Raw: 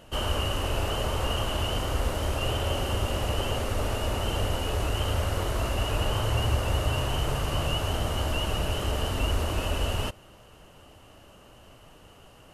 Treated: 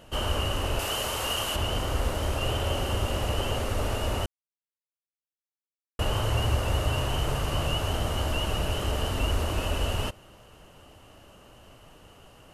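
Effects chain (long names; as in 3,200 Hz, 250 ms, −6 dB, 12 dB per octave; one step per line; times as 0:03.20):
0:00.79–0:01.56: spectral tilt +2.5 dB per octave
0:04.26–0:05.99: silence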